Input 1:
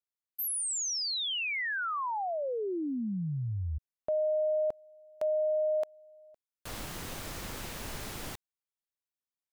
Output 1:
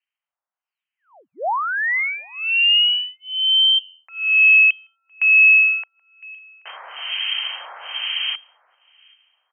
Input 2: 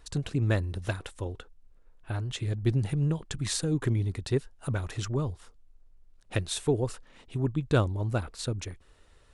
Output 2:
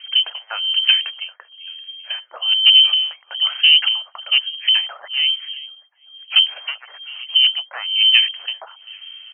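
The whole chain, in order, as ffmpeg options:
ffmpeg -i in.wav -filter_complex "[0:a]asoftclip=type=tanh:threshold=-19dB,asplit=2[link_01][link_02];[link_02]aecho=0:1:390|780|1170:0.0631|0.0334|0.0177[link_03];[link_01][link_03]amix=inputs=2:normalize=0,volume=25dB,asoftclip=hard,volume=-25dB,equalizer=frequency=1500:width=1.5:gain=-3.5,acrossover=split=1700[link_04][link_05];[link_04]aeval=exprs='val(0)*(1-1/2+1/2*cos(2*PI*1.1*n/s))':channel_layout=same[link_06];[link_05]aeval=exprs='val(0)*(1-1/2-1/2*cos(2*PI*1.1*n/s))':channel_layout=same[link_07];[link_06][link_07]amix=inputs=2:normalize=0,lowpass=frequency=2700:width_type=q:width=0.5098,lowpass=frequency=2700:width_type=q:width=0.6013,lowpass=frequency=2700:width_type=q:width=0.9,lowpass=frequency=2700:width_type=q:width=2.563,afreqshift=-3200,highpass=frequency=660:width=0.5412,highpass=frequency=660:width=1.3066,apsyclip=20.5dB,volume=-1.5dB" out.wav

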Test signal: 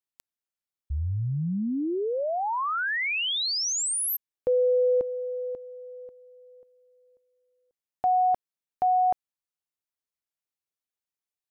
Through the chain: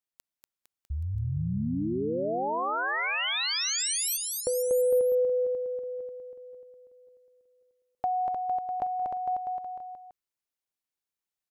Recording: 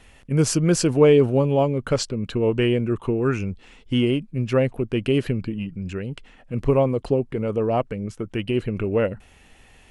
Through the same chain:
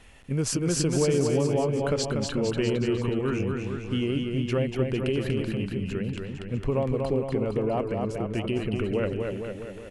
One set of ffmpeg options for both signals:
ffmpeg -i in.wav -filter_complex "[0:a]acompressor=threshold=-32dB:ratio=2:attack=56:release=55:knee=6:detection=peak,asplit=2[link_01][link_02];[link_02]aecho=0:1:240|456|650.4|825.4|982.8:0.631|0.398|0.251|0.158|0.1[link_03];[link_01][link_03]amix=inputs=2:normalize=0,volume=-1.5dB" out.wav

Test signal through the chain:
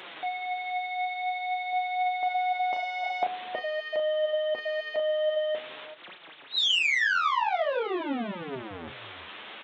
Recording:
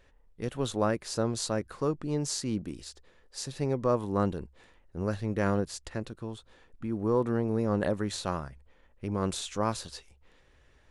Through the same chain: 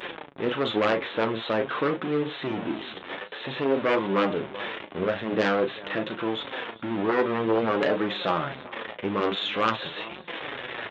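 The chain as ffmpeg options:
ffmpeg -i in.wav -filter_complex "[0:a]aeval=exprs='val(0)+0.5*0.0211*sgn(val(0))':channel_layout=same,areverse,acompressor=mode=upward:threshold=-45dB:ratio=2.5,areverse,asplit=2[link_01][link_02];[link_02]adelay=36,volume=-8dB[link_03];[link_01][link_03]amix=inputs=2:normalize=0,aecho=1:1:388:0.0891,aresample=8000,aresample=44100,aeval=exprs='0.251*(cos(1*acos(clip(val(0)/0.251,-1,1)))-cos(1*PI/2))+0.0251*(cos(3*acos(clip(val(0)/0.251,-1,1)))-cos(3*PI/2))+0.00316*(cos(8*acos(clip(val(0)/0.251,-1,1)))-cos(8*PI/2))':channel_layout=same,aresample=16000,aeval=exprs='0.282*sin(PI/2*3.55*val(0)/0.282)':channel_layout=same,aresample=44100,flanger=delay=5.3:depth=5.7:regen=43:speed=0.49:shape=triangular,afftfilt=real='re*lt(hypot(re,im),1)':imag='im*lt(hypot(re,im),1)':win_size=1024:overlap=0.75,highpass=290" out.wav

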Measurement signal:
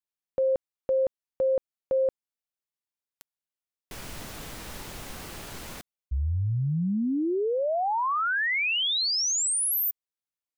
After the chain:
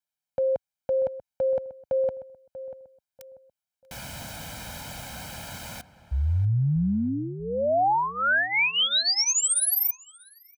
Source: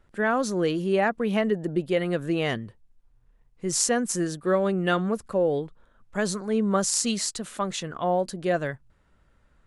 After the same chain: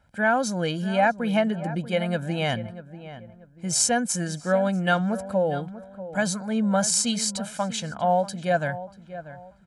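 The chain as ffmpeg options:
ffmpeg -i in.wav -filter_complex "[0:a]highpass=66,aecho=1:1:1.3:0.84,asplit=2[link_01][link_02];[link_02]adelay=639,lowpass=frequency=1600:poles=1,volume=-13.5dB,asplit=2[link_03][link_04];[link_04]adelay=639,lowpass=frequency=1600:poles=1,volume=0.33,asplit=2[link_05][link_06];[link_06]adelay=639,lowpass=frequency=1600:poles=1,volume=0.33[link_07];[link_03][link_05][link_07]amix=inputs=3:normalize=0[link_08];[link_01][link_08]amix=inputs=2:normalize=0" out.wav

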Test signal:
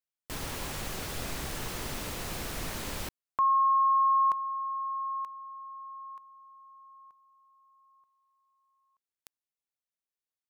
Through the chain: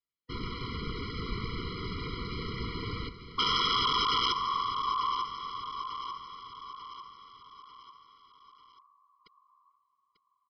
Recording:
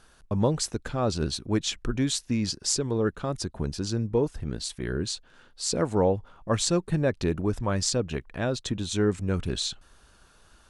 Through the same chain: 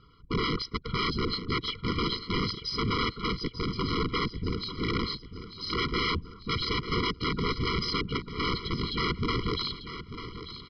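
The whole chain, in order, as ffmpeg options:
ffmpeg -i in.wav -af "afftfilt=real='hypot(re,im)*cos(2*PI*random(0))':imag='hypot(re,im)*sin(2*PI*random(1))':win_size=512:overlap=0.75,aresample=11025,aeval=exprs='(mod(28.2*val(0)+1,2)-1)/28.2':channel_layout=same,aresample=44100,aecho=1:1:893|1786|2679|3572|4465:0.266|0.128|0.0613|0.0294|0.0141,afftfilt=real='re*eq(mod(floor(b*sr/1024/480),2),0)':imag='im*eq(mod(floor(b*sr/1024/480),2),0)':win_size=1024:overlap=0.75,volume=8.5dB" out.wav

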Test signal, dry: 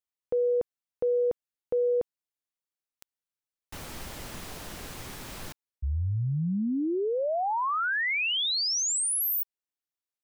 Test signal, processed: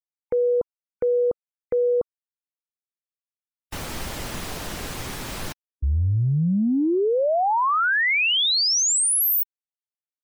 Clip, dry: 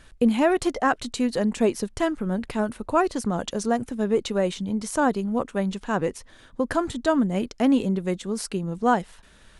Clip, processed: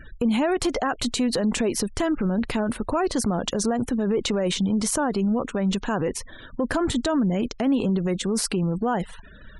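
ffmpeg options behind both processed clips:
ffmpeg -i in.wav -af "acompressor=threshold=-27dB:ratio=6:attack=0.32:release=71:knee=1:detection=peak,afftfilt=real='re*gte(hypot(re,im),0.00316)':imag='im*gte(hypot(re,im),0.00316)':win_size=1024:overlap=0.75,volume=9dB" out.wav

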